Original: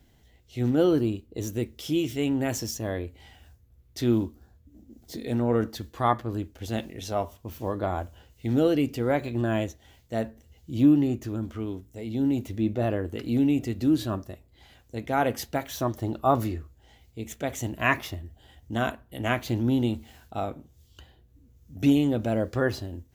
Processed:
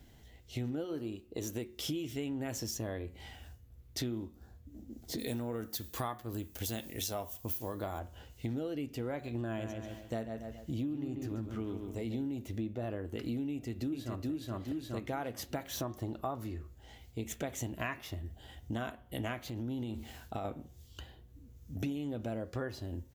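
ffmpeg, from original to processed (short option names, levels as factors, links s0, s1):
-filter_complex "[0:a]asettb=1/sr,asplit=3[s0][s1][s2];[s0]atrim=end=0.844[s3];[s1]atrim=start=0.84:end=1.79,asetpts=PTS-STARTPTS,afade=t=in:d=0.004:c=qsin,afade=t=out:st=0.946:d=0.004:c=qsin,lowshelf=f=200:g=-9[s4];[s2]atrim=start=1.786[s5];[s3][s4]acrossfade=d=0.004:c1=hsin:c2=qsin[s6];[s6][s5]acrossfade=d=0.004:c1=qsin:c2=hsin,asplit=3[s7][s8][s9];[s7]afade=t=out:st=5.18:d=0.02[s10];[s8]aemphasis=mode=production:type=75fm,afade=t=in:st=5.18:d=0.02,afade=t=out:st=7.98:d=0.02[s11];[s9]afade=t=in:st=7.98:d=0.02[s12];[s10][s11][s12]amix=inputs=3:normalize=0,asplit=3[s13][s14][s15];[s13]afade=t=out:st=9.57:d=0.02[s16];[s14]asplit=2[s17][s18];[s18]adelay=138,lowpass=f=4300:p=1,volume=0.422,asplit=2[s19][s20];[s20]adelay=138,lowpass=f=4300:p=1,volume=0.33,asplit=2[s21][s22];[s22]adelay=138,lowpass=f=4300:p=1,volume=0.33,asplit=2[s23][s24];[s24]adelay=138,lowpass=f=4300:p=1,volume=0.33[s25];[s17][s19][s21][s23][s25]amix=inputs=5:normalize=0,afade=t=in:st=9.57:d=0.02,afade=t=out:st=12.24:d=0.02[s26];[s15]afade=t=in:st=12.24:d=0.02[s27];[s16][s26][s27]amix=inputs=3:normalize=0,asplit=2[s28][s29];[s29]afade=t=in:st=13.5:d=0.01,afade=t=out:st=14.3:d=0.01,aecho=0:1:420|840|1260|1680|2100:0.891251|0.311938|0.109178|0.0382124|0.0133743[s30];[s28][s30]amix=inputs=2:normalize=0,asettb=1/sr,asplit=3[s31][s32][s33];[s31]atrim=end=19.414[s34];[s32]atrim=start=19.41:end=20.45,asetpts=PTS-STARTPTS,afade=t=in:d=0.004:c=qsin,afade=t=out:st=1.036:d=0.004:c=qsin,acompressor=threshold=0.0251:ratio=6:attack=3.2:release=140:knee=1:detection=peak[s35];[s33]atrim=start=20.446[s36];[s34][s35]acrossfade=d=0.004:c1=hsin:c2=qsin[s37];[s37][s36]acrossfade=d=0.004:c1=qsin:c2=hsin,acompressor=threshold=0.0158:ratio=12,bandreject=f=181.9:t=h:w=4,bandreject=f=363.8:t=h:w=4,bandreject=f=545.7:t=h:w=4,bandreject=f=727.6:t=h:w=4,bandreject=f=909.5:t=h:w=4,bandreject=f=1091.4:t=h:w=4,bandreject=f=1273.3:t=h:w=4,bandreject=f=1455.2:t=h:w=4,bandreject=f=1637.1:t=h:w=4,bandreject=f=1819:t=h:w=4,bandreject=f=2000.9:t=h:w=4,bandreject=f=2182.8:t=h:w=4,bandreject=f=2364.7:t=h:w=4,bandreject=f=2546.6:t=h:w=4,bandreject=f=2728.5:t=h:w=4,bandreject=f=2910.4:t=h:w=4,bandreject=f=3092.3:t=h:w=4,bandreject=f=3274.2:t=h:w=4,bandreject=f=3456.1:t=h:w=4,bandreject=f=3638:t=h:w=4,volume=1.26"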